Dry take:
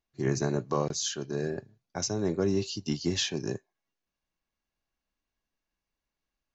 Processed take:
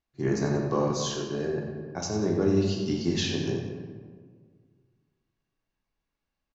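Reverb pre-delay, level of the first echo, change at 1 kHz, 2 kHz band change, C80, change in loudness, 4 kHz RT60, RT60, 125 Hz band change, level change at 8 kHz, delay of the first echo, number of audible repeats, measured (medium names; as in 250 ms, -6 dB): 18 ms, -9.5 dB, +2.5 dB, +1.5 dB, 3.5 dB, +2.5 dB, 0.90 s, 1.7 s, +3.5 dB, no reading, 92 ms, 1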